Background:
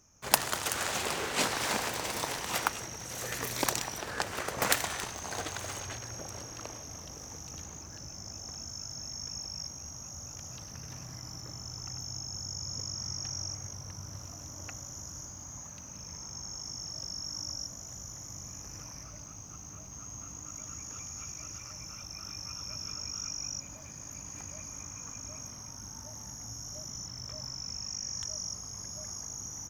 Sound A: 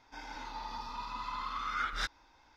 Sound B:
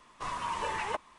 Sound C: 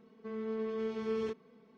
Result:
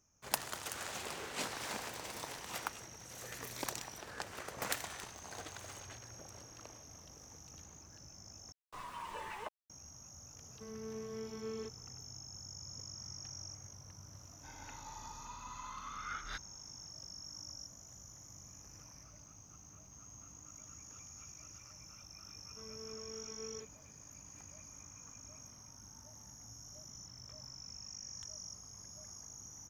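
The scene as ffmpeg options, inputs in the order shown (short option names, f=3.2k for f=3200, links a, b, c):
-filter_complex "[3:a]asplit=2[a][b];[0:a]volume=-10.5dB[c];[2:a]aeval=exprs='val(0)*gte(abs(val(0)),0.00596)':c=same[d];[1:a]equalizer=f=7.5k:t=o:w=0.77:g=-12[e];[b]equalizer=f=180:t=o:w=1.5:g=-6[f];[c]asplit=2[g][h];[g]atrim=end=8.524[i];[d]atrim=end=1.18,asetpts=PTS-STARTPTS,volume=-11dB[j];[h]atrim=start=9.696[k];[a]atrim=end=1.77,asetpts=PTS-STARTPTS,volume=-8.5dB,afade=t=in:d=0.004:c=hsin,afade=t=out:st=1.766:d=0.004:c=hsin,adelay=10360[l];[e]atrim=end=2.56,asetpts=PTS-STARTPTS,volume=-8.5dB,afade=t=in:d=0.004:c=hsin,afade=t=out:st=2.556:d=0.004:c=hsin,adelay=14310[m];[f]atrim=end=1.77,asetpts=PTS-STARTPTS,volume=-12dB,afade=t=in:d=0.004:c=hsin,afade=t=out:st=1.766:d=0.004:c=hsin,adelay=22320[n];[i][j]acrossfade=d=0.004:c1=hsin:c2=hsin[o];[o][k]acrossfade=d=0.004:c1=hsin:c2=hsin[p];[p][l][m][n]amix=inputs=4:normalize=0"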